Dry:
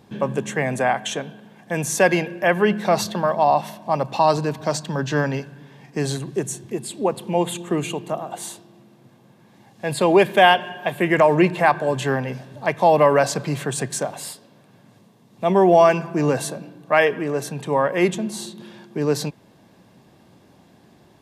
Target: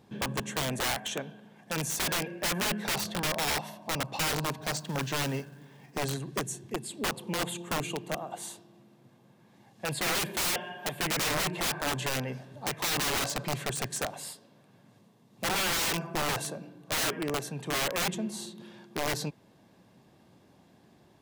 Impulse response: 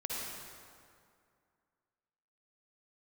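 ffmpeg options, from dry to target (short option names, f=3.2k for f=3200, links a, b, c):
-filter_complex "[0:a]asettb=1/sr,asplit=3[a][b][c];[a]atrim=end=4.624[d];[b]atrim=start=4.62:end=6.04,asetpts=PTS-STARTPTS,afade=t=in:d=0.004:c=qsin,afade=t=out:st=1.416:d=0.004:c=qsin,acrusher=bits=4:mode=log:mix=0:aa=0.000001[e];[c]atrim=start=6.036[f];[d][e]acrossfade=d=0.004:c1=hsin:c2=qsin[g];[g][f]acrossfade=d=0.004:c1=qsin:c2=hsin,aeval=exprs='(mod(6.68*val(0)+1,2)-1)/6.68':c=same,volume=-7.5dB"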